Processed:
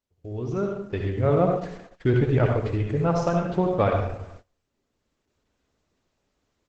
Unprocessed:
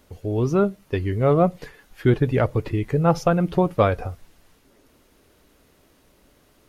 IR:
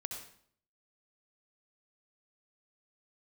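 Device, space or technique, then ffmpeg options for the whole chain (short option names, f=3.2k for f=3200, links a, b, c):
speakerphone in a meeting room: -filter_complex "[1:a]atrim=start_sample=2205[a];[0:a][a]afir=irnorm=-1:irlink=0,asplit=2[b][c];[c]adelay=370,highpass=300,lowpass=3.4k,asoftclip=type=hard:threshold=-17dB,volume=-23dB[d];[b][d]amix=inputs=2:normalize=0,dynaudnorm=f=500:g=3:m=16dB,agate=range=-21dB:threshold=-35dB:ratio=16:detection=peak,volume=-8.5dB" -ar 48000 -c:a libopus -b:a 12k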